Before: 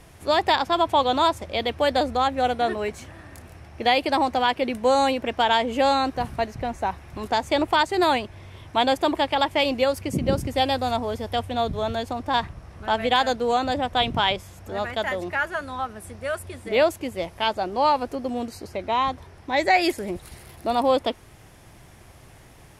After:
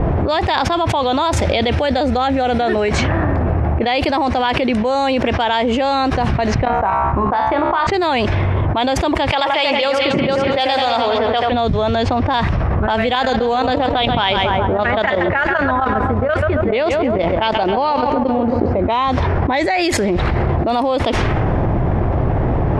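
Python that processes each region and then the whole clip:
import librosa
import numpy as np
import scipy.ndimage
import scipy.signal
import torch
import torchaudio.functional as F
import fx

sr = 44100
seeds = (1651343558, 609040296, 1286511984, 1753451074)

y = fx.chain(x, sr, fx.notch(hz=1100.0, q=7.2),
    fx.env_flatten(amount_pct=50), at=(1.33, 2.89))
y = fx.chain(y, sr, fx.level_steps(step_db=13),
    fx.peak_eq(hz=1200.0, db=10.5, octaves=1.0),
    fx.comb_fb(f0_hz=67.0, decay_s=0.52, harmonics='all', damping=0.0, mix_pct=80), at=(6.65, 7.87))
y = fx.chain(y, sr, fx.highpass(hz=810.0, slope=6),
    fx.echo_split(split_hz=2400.0, low_ms=86, high_ms=211, feedback_pct=52, wet_db=-6.5), at=(9.31, 11.52))
y = fx.chain(y, sr, fx.level_steps(step_db=13),
    fx.echo_feedback(ms=135, feedback_pct=51, wet_db=-12.0), at=(13.15, 18.82))
y = scipy.signal.sosfilt(scipy.signal.butter(2, 5200.0, 'lowpass', fs=sr, output='sos'), y)
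y = fx.env_lowpass(y, sr, base_hz=700.0, full_db=-20.0)
y = fx.env_flatten(y, sr, amount_pct=100)
y = y * 10.0 ** (-1.0 / 20.0)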